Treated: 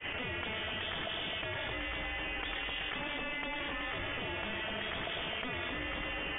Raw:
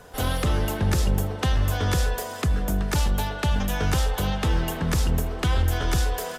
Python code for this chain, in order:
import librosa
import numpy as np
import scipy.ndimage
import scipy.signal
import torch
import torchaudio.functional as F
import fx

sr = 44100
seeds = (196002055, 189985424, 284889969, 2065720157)

p1 = fx.fade_in_head(x, sr, length_s=0.52)
p2 = scipy.signal.sosfilt(scipy.signal.butter(2, 70.0, 'highpass', fs=sr, output='sos'), p1)
p3 = np.diff(p2, prepend=0.0)
p4 = fx.rider(p3, sr, range_db=10, speed_s=0.5)
p5 = p3 + F.gain(torch.from_numpy(p4), -1.0).numpy()
p6 = 10.0 ** (-27.5 / 20.0) * np.tanh(p5 / 10.0 ** (-27.5 / 20.0))
p7 = fx.air_absorb(p6, sr, metres=99.0)
p8 = fx.echo_split(p7, sr, split_hz=2600.0, low_ms=100, high_ms=259, feedback_pct=52, wet_db=-5)
p9 = fx.freq_invert(p8, sr, carrier_hz=3500)
y = fx.env_flatten(p9, sr, amount_pct=100)